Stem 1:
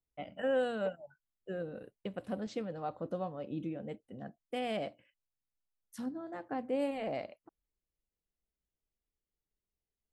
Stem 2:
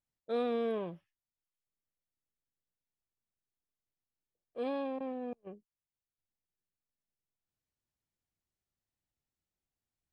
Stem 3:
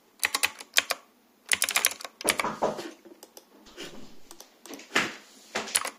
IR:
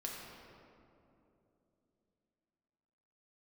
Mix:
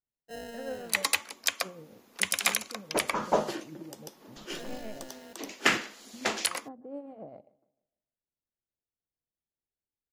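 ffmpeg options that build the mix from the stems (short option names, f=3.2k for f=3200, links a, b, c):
-filter_complex "[0:a]afwtdn=0.00562,lowshelf=f=490:g=5.5,tremolo=f=7.2:d=0.57,adelay=150,volume=-8.5dB,asplit=2[a][b];[b]volume=-21.5dB[c];[1:a]acrusher=samples=38:mix=1:aa=0.000001,volume=-10dB,asplit=2[d][e];[e]volume=-15dB[f];[2:a]alimiter=limit=-11dB:level=0:latency=1:release=343,adelay=700,volume=2dB[g];[c][f]amix=inputs=2:normalize=0,aecho=0:1:151|302|453|604|755:1|0.37|0.137|0.0507|0.0187[h];[a][d][g][h]amix=inputs=4:normalize=0"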